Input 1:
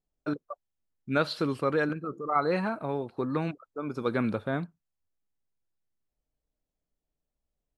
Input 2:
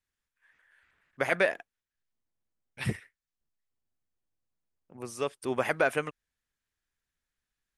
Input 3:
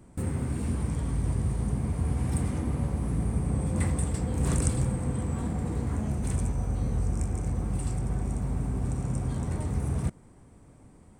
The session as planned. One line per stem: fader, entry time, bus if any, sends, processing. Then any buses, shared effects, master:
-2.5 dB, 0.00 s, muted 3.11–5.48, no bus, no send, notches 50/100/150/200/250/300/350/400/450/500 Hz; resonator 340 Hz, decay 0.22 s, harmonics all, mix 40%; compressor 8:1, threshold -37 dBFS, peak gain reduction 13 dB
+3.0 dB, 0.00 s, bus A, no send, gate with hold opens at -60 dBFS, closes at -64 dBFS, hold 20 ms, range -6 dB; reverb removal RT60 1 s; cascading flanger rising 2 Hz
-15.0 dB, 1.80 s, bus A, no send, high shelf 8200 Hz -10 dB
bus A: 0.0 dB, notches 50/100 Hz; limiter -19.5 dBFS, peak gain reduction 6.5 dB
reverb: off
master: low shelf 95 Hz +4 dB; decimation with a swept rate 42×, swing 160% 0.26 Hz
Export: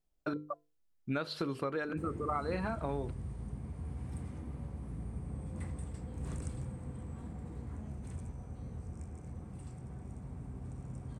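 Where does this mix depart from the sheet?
stem 1 -2.5 dB -> +5.0 dB; stem 2: muted; master: missing decimation with a swept rate 42×, swing 160% 0.26 Hz

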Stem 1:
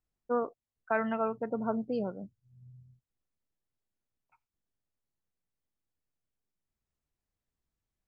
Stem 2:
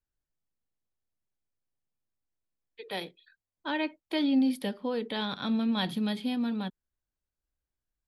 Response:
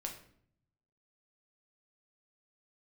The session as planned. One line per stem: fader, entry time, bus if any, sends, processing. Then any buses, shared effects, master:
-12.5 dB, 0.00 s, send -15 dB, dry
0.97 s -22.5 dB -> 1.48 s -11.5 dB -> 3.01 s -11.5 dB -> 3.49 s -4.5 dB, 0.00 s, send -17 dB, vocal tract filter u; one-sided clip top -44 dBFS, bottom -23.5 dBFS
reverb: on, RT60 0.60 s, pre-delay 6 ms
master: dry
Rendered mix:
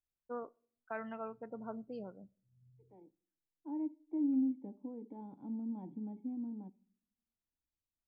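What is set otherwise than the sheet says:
stem 1: send -15 dB -> -21.5 dB; stem 2: missing one-sided clip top -44 dBFS, bottom -23.5 dBFS

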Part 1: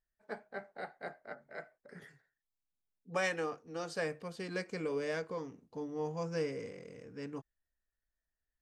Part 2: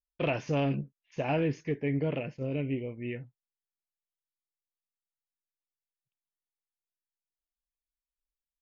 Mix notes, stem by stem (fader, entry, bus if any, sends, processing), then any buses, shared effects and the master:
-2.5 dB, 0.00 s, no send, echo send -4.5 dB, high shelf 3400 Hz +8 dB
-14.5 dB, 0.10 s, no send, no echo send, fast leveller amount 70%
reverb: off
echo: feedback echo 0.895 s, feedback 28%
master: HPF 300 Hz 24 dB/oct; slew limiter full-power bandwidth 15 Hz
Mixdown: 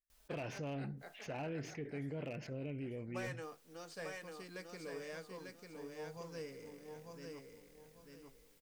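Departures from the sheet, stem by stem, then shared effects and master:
stem 1 -2.5 dB -> -11.5 dB; master: missing HPF 300 Hz 24 dB/oct

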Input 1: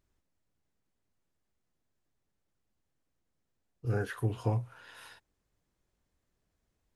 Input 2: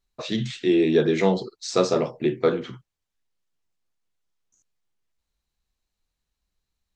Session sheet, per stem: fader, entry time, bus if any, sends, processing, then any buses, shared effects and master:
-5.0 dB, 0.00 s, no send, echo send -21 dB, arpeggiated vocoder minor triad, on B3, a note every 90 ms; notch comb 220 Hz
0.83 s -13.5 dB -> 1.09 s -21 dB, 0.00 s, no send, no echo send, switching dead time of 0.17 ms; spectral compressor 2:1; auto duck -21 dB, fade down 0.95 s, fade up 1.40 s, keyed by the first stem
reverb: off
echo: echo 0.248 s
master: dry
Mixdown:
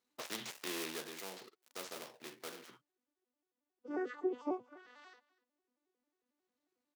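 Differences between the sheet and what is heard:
stem 1: missing notch comb 220 Hz; master: extra HPF 270 Hz 12 dB/oct

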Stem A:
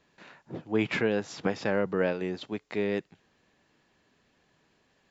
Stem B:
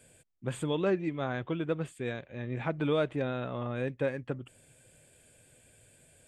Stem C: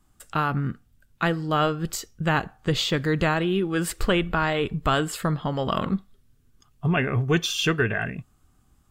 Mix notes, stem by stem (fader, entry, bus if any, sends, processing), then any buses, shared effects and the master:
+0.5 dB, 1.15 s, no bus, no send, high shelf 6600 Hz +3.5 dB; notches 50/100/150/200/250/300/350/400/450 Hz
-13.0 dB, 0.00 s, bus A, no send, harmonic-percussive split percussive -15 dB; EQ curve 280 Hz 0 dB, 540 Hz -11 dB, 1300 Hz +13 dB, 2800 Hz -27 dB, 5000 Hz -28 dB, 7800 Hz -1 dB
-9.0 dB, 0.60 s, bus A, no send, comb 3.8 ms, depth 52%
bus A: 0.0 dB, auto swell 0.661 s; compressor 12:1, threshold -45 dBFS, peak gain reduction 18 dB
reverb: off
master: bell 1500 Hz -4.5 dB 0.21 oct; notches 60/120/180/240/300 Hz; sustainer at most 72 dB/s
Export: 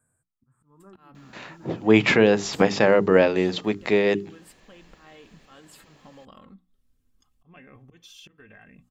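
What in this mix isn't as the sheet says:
stem A +0.5 dB -> +11.0 dB; stem B -13.0 dB -> -6.5 dB; master: missing sustainer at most 72 dB/s

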